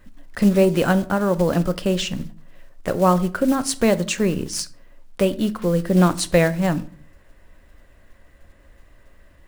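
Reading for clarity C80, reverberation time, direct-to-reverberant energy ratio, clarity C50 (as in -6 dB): 23.5 dB, 0.45 s, 12.0 dB, 19.0 dB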